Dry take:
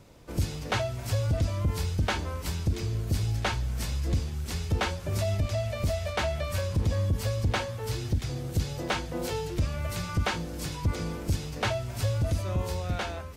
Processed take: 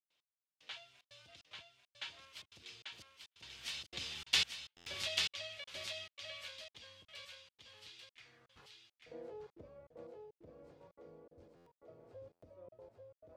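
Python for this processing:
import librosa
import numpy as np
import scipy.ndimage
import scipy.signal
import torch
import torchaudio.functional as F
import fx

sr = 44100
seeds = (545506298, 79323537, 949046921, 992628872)

p1 = fx.doppler_pass(x, sr, speed_mps=13, closest_m=2.0, pass_at_s=4.45)
p2 = fx.filter_sweep_bandpass(p1, sr, from_hz=3200.0, to_hz=520.0, start_s=8.05, end_s=9.01, q=2.4)
p3 = fx.step_gate(p2, sr, bpm=149, pattern='.x....xxxx.xxx', floor_db=-60.0, edge_ms=4.5)
p4 = p3 + fx.echo_single(p3, sr, ms=841, db=-4.0, dry=0)
p5 = fx.buffer_glitch(p4, sr, at_s=(4.76, 11.56, 12.32), block=512, repeats=8)
y = p5 * 10.0 ** (17.5 / 20.0)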